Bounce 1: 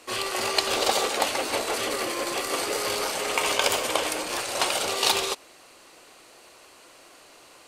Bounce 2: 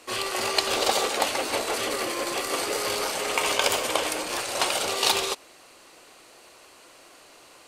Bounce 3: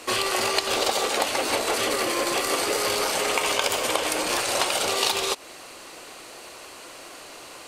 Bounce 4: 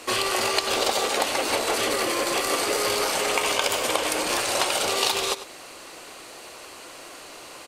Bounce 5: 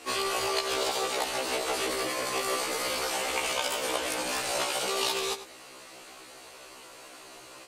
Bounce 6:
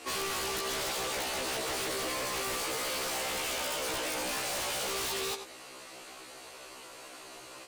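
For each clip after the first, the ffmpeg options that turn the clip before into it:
ffmpeg -i in.wav -af anull out.wav
ffmpeg -i in.wav -af "acompressor=threshold=-31dB:ratio=4,volume=9dB" out.wav
ffmpeg -i in.wav -filter_complex "[0:a]asplit=2[link_01][link_02];[link_02]adelay=99.13,volume=-13dB,highshelf=frequency=4000:gain=-2.23[link_03];[link_01][link_03]amix=inputs=2:normalize=0" out.wav
ffmpeg -i in.wav -af "afftfilt=real='re*1.73*eq(mod(b,3),0)':imag='im*1.73*eq(mod(b,3),0)':win_size=2048:overlap=0.75,volume=-3.5dB" out.wav
ffmpeg -i in.wav -af "aeval=exprs='0.0355*(abs(mod(val(0)/0.0355+3,4)-2)-1)':channel_layout=same" out.wav

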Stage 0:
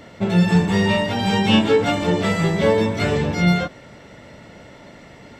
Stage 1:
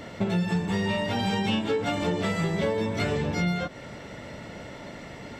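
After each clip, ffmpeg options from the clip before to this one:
ffmpeg -i in.wav -af "acompressor=threshold=-26dB:ratio=6,volume=2dB" out.wav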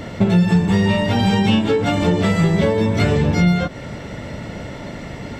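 ffmpeg -i in.wav -af "lowshelf=frequency=220:gain=8,volume=7dB" out.wav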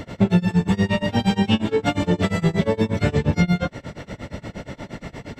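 ffmpeg -i in.wav -af "tremolo=f=8.5:d=0.96" out.wav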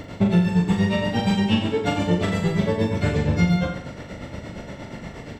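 ffmpeg -i in.wav -af "aecho=1:1:40|84|132.4|185.6|244.2:0.631|0.398|0.251|0.158|0.1,volume=-3dB" out.wav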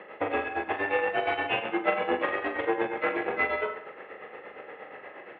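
ffmpeg -i in.wav -af "aeval=exprs='0.447*(cos(1*acos(clip(val(0)/0.447,-1,1)))-cos(1*PI/2))+0.0282*(cos(7*acos(clip(val(0)/0.447,-1,1)))-cos(7*PI/2))':channel_layout=same,highpass=frequency=530:width_type=q:width=0.5412,highpass=frequency=530:width_type=q:width=1.307,lowpass=frequency=2700:width_type=q:width=0.5176,lowpass=frequency=2700:width_type=q:width=0.7071,lowpass=frequency=2700:width_type=q:width=1.932,afreqshift=-100,volume=3dB" out.wav

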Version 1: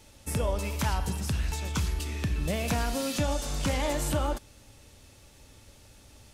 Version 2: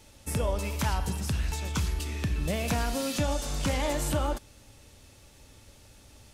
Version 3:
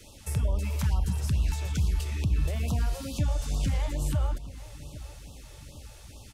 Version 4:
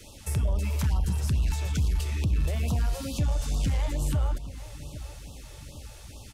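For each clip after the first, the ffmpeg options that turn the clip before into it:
ffmpeg -i in.wav -af anull out.wav
ffmpeg -i in.wav -filter_complex "[0:a]acrossover=split=170[link_01][link_02];[link_02]acompressor=threshold=-45dB:ratio=3[link_03];[link_01][link_03]amix=inputs=2:normalize=0,asplit=2[link_04][link_05];[link_05]adelay=805,lowpass=frequency=3300:poles=1,volume=-16.5dB,asplit=2[link_06][link_07];[link_07]adelay=805,lowpass=frequency=3300:poles=1,volume=0.53,asplit=2[link_08][link_09];[link_09]adelay=805,lowpass=frequency=3300:poles=1,volume=0.53,asplit=2[link_10][link_11];[link_11]adelay=805,lowpass=frequency=3300:poles=1,volume=0.53,asplit=2[link_12][link_13];[link_13]adelay=805,lowpass=frequency=3300:poles=1,volume=0.53[link_14];[link_04][link_06][link_08][link_10][link_12][link_14]amix=inputs=6:normalize=0,afftfilt=real='re*(1-between(b*sr/1024,210*pow(1900/210,0.5+0.5*sin(2*PI*2.3*pts/sr))/1.41,210*pow(1900/210,0.5+0.5*sin(2*PI*2.3*pts/sr))*1.41))':imag='im*(1-between(b*sr/1024,210*pow(1900/210,0.5+0.5*sin(2*PI*2.3*pts/sr))/1.41,210*pow(1900/210,0.5+0.5*sin(2*PI*2.3*pts/sr))*1.41))':win_size=1024:overlap=0.75,volume=4.5dB" out.wav
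ffmpeg -i in.wav -af "aeval=exprs='0.168*(cos(1*acos(clip(val(0)/0.168,-1,1)))-cos(1*PI/2))+0.0133*(cos(5*acos(clip(val(0)/0.168,-1,1)))-cos(5*PI/2))+0.00133*(cos(7*acos(clip(val(0)/0.168,-1,1)))-cos(7*PI/2))':channel_layout=same" out.wav

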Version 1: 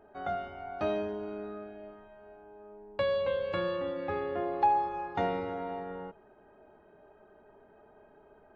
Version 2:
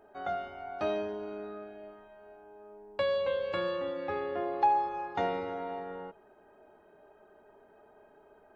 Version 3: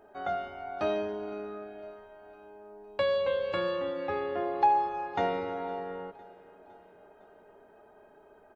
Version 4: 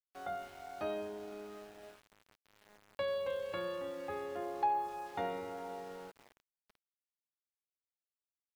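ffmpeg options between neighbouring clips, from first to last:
ffmpeg -i in.wav -af "bass=frequency=250:gain=-6,treble=frequency=4000:gain=4" out.wav
ffmpeg -i in.wav -af "aecho=1:1:508|1016|1524|2032:0.075|0.0442|0.0261|0.0154,volume=2dB" out.wav
ffmpeg -i in.wav -af "aeval=exprs='val(0)*gte(abs(val(0)),0.00631)':channel_layout=same,volume=-8.5dB" out.wav

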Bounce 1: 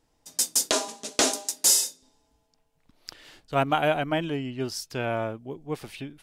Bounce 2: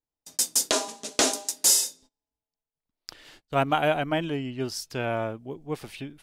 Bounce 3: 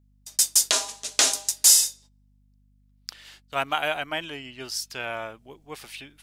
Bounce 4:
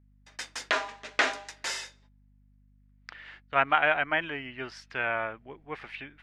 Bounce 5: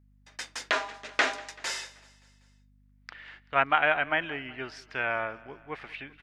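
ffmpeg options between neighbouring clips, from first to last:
ffmpeg -i in.wav -af "agate=range=-25dB:threshold=-51dB:ratio=16:detection=peak" out.wav
ffmpeg -i in.wav -af "tiltshelf=frequency=660:gain=-9.5,aeval=exprs='val(0)+0.00178*(sin(2*PI*50*n/s)+sin(2*PI*2*50*n/s)/2+sin(2*PI*3*50*n/s)/3+sin(2*PI*4*50*n/s)/4+sin(2*PI*5*50*n/s)/5)':channel_layout=same,volume=-5dB" out.wav
ffmpeg -i in.wav -af "lowpass=frequency=1900:width_type=q:width=2.1" out.wav
ffmpeg -i in.wav -af "aecho=1:1:192|384|576|768:0.0794|0.0461|0.0267|0.0155" out.wav

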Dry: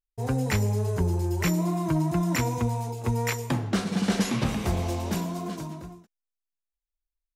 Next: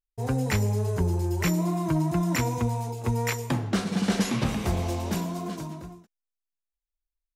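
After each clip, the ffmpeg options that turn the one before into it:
ffmpeg -i in.wav -af anull out.wav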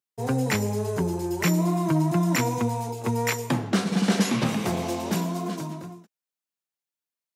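ffmpeg -i in.wav -af "highpass=frequency=130:width=0.5412,highpass=frequency=130:width=1.3066,acontrast=73,volume=-3.5dB" out.wav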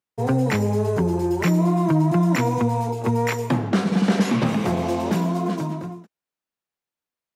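ffmpeg -i in.wav -filter_complex "[0:a]asplit=2[link_01][link_02];[link_02]alimiter=limit=-21dB:level=0:latency=1:release=125,volume=1.5dB[link_03];[link_01][link_03]amix=inputs=2:normalize=0,highshelf=frequency=3400:gain=-11" out.wav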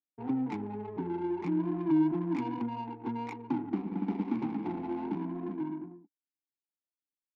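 ffmpeg -i in.wav -filter_complex "[0:a]asplit=3[link_01][link_02][link_03];[link_01]bandpass=frequency=300:width_type=q:width=8,volume=0dB[link_04];[link_02]bandpass=frequency=870:width_type=q:width=8,volume=-6dB[link_05];[link_03]bandpass=frequency=2240:width_type=q:width=8,volume=-9dB[link_06];[link_04][link_05][link_06]amix=inputs=3:normalize=0,adynamicsmooth=sensitivity=4:basefreq=590" out.wav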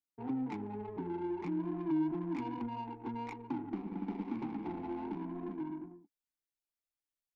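ffmpeg -i in.wav -filter_complex "[0:a]asubboost=boost=4:cutoff=72,asplit=2[link_01][link_02];[link_02]alimiter=level_in=6.5dB:limit=-24dB:level=0:latency=1:release=134,volume=-6.5dB,volume=-2dB[link_03];[link_01][link_03]amix=inputs=2:normalize=0,volume=-7.5dB" out.wav

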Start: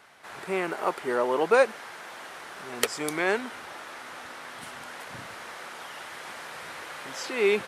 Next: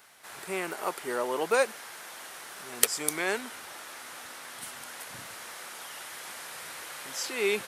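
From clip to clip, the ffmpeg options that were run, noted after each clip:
ffmpeg -i in.wav -af "aemphasis=mode=production:type=75kf,volume=-5.5dB" out.wav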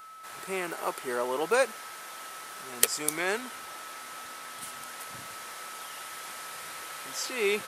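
ffmpeg -i in.wav -af "aeval=exprs='val(0)+0.00562*sin(2*PI*1300*n/s)':channel_layout=same" out.wav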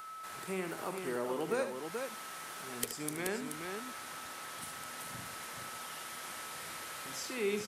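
ffmpeg -i in.wav -filter_complex "[0:a]acrossover=split=290[link_01][link_02];[link_02]acompressor=threshold=-51dB:ratio=2[link_03];[link_01][link_03]amix=inputs=2:normalize=0,asplit=2[link_04][link_05];[link_05]aecho=0:1:43|74|429:0.15|0.335|0.531[link_06];[link_04][link_06]amix=inputs=2:normalize=0,volume=2.5dB" out.wav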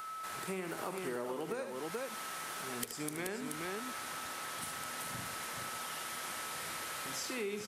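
ffmpeg -i in.wav -af "acompressor=threshold=-38dB:ratio=10,volume=3dB" out.wav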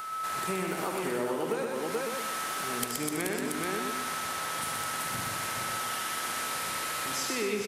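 ffmpeg -i in.wav -af "aecho=1:1:123|246|369|492|615:0.631|0.271|0.117|0.0502|0.0216,volume=6dB" out.wav

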